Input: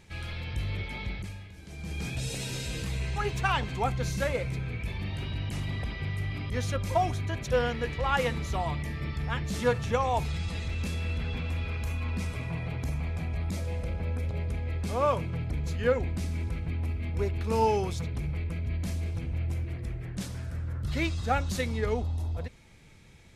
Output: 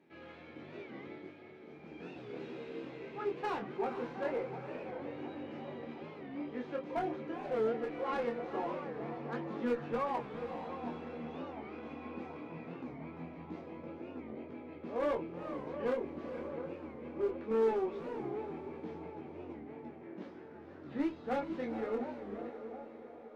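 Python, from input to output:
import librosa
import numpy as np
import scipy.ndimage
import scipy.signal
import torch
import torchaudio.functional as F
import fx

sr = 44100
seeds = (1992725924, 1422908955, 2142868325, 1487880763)

p1 = fx.tracing_dist(x, sr, depth_ms=0.24)
p2 = fx.ladder_highpass(p1, sr, hz=250.0, resonance_pct=45)
p3 = fx.spacing_loss(p2, sr, db_at_10k=44)
p4 = fx.doubler(p3, sr, ms=13.0, db=-4)
p5 = 10.0 ** (-33.0 / 20.0) * np.tanh(p4 / 10.0 ** (-33.0 / 20.0))
p6 = p4 + (p5 * librosa.db_to_amplitude(-4.0))
p7 = fx.vibrato(p6, sr, rate_hz=2.9, depth_cents=14.0)
p8 = fx.clip_asym(p7, sr, top_db=-30.0, bottom_db=-25.0)
p9 = fx.echo_diffused(p8, sr, ms=472, feedback_pct=45, wet_db=-9)
p10 = fx.chorus_voices(p9, sr, voices=2, hz=0.21, base_ms=24, depth_ms=3.0, mix_pct=40)
p11 = fx.echo_banded(p10, sr, ms=714, feedback_pct=65, hz=710.0, wet_db=-10)
p12 = fx.record_warp(p11, sr, rpm=45.0, depth_cents=160.0)
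y = p12 * librosa.db_to_amplitude(2.5)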